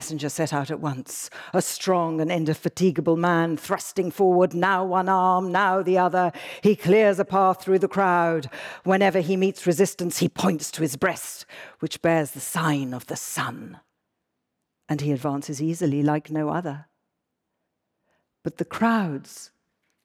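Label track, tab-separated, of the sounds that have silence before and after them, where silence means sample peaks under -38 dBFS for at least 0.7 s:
14.890000	16.820000	sound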